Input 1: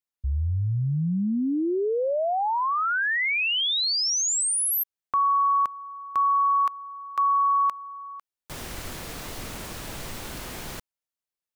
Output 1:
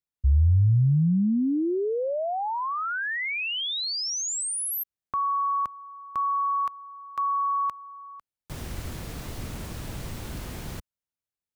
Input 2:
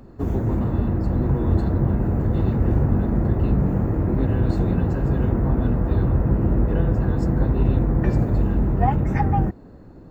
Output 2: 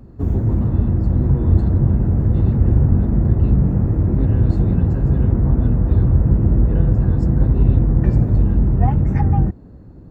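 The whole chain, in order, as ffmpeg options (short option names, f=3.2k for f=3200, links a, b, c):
-af "equalizer=f=76:w=0.3:g=11.5,volume=-5dB"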